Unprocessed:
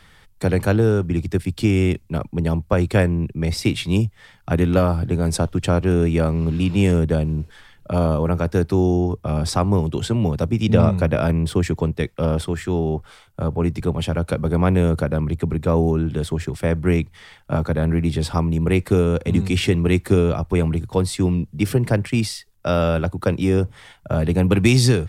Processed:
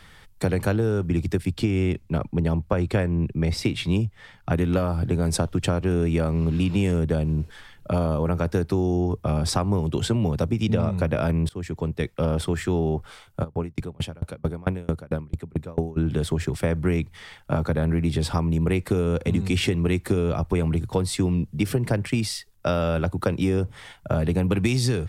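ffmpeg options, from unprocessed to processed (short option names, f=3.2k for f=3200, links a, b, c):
-filter_complex "[0:a]asettb=1/sr,asplit=3[a][b][c];[a]atrim=end=1.504[d];[b]atrim=start=1.5:end=4.53,asetpts=PTS-STARTPTS,afade=t=in:d=0.004:c=qsin,afade=t=out:st=3.026:d=0.004:c=qsin,highshelf=f=5.7k:g=-8[e];[c]atrim=start=4.526[f];[d][e]acrossfade=d=0.004:c1=hsin:c2=qsin[g];[g][f]acrossfade=d=0.004:c1=qsin:c2=hsin,asplit=3[h][i][j];[h]afade=t=out:st=13.43:d=0.02[k];[i]aeval=exprs='val(0)*pow(10,-32*if(lt(mod(4.5*n/s,1),2*abs(4.5)/1000),1-mod(4.5*n/s,1)/(2*abs(4.5)/1000),(mod(4.5*n/s,1)-2*abs(4.5)/1000)/(1-2*abs(4.5)/1000))/20)':c=same,afade=t=in:st=13.43:d=0.02,afade=t=out:st=15.96:d=0.02[l];[j]afade=t=in:st=15.96:d=0.02[m];[k][l][m]amix=inputs=3:normalize=0,asplit=2[n][o];[n]atrim=end=11.49,asetpts=PTS-STARTPTS,afade=t=out:st=11.486:d=0.004:c=hsin:silence=0.0891251[p];[o]atrim=start=11.49,asetpts=PTS-STARTPTS,afade=t=in:d=0.87:silence=0.0891251[q];[p][q]concat=n=2:v=0:a=1,acompressor=threshold=-20dB:ratio=6,volume=1dB"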